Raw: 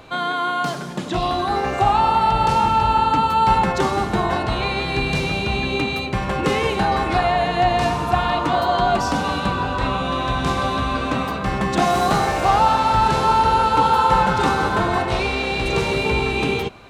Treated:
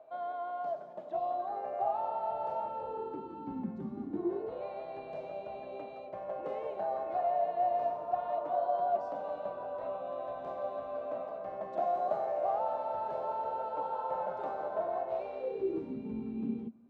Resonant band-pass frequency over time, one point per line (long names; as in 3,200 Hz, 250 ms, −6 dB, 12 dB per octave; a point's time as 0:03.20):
resonant band-pass, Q 13
0:02.62 640 Hz
0:03.85 200 Hz
0:04.70 620 Hz
0:15.34 620 Hz
0:15.98 230 Hz